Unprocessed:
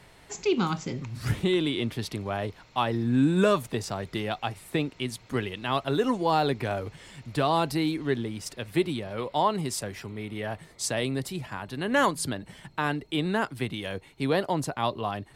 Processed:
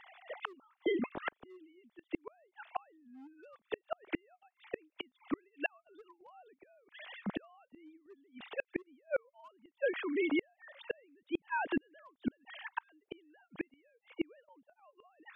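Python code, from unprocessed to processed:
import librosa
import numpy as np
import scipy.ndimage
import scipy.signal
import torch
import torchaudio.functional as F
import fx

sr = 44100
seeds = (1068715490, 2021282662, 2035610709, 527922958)

y = fx.sine_speech(x, sr)
y = np.clip(y, -10.0 ** (-17.5 / 20.0), 10.0 ** (-17.5 / 20.0))
y = fx.gate_flip(y, sr, shuts_db=-30.0, range_db=-41)
y = y * librosa.db_to_amplitude(8.5)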